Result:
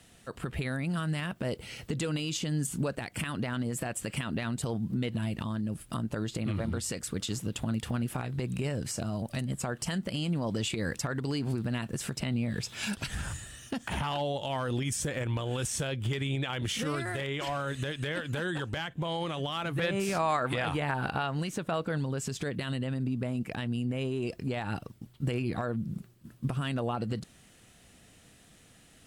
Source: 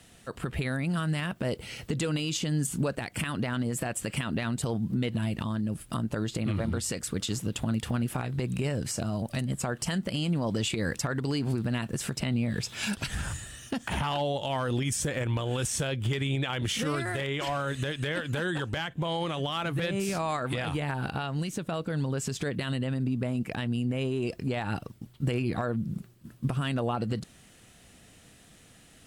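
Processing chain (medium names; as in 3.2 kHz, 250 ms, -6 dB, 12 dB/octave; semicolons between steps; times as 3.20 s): 19.78–21.98 s: peaking EQ 1.1 kHz +6 dB 2.8 oct; trim -2.5 dB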